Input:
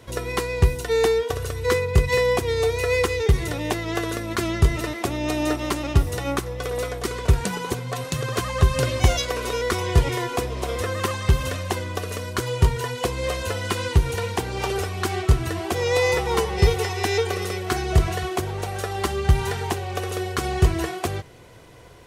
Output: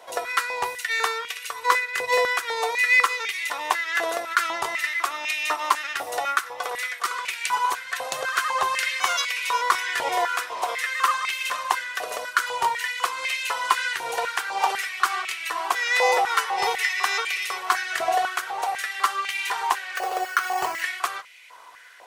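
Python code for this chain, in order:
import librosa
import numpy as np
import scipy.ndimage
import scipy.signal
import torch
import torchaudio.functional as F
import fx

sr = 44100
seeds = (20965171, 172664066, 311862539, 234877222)

y = fx.resample_bad(x, sr, factor=6, down='filtered', up='hold', at=(19.96, 20.82))
y = fx.filter_held_highpass(y, sr, hz=4.0, low_hz=730.0, high_hz=2300.0)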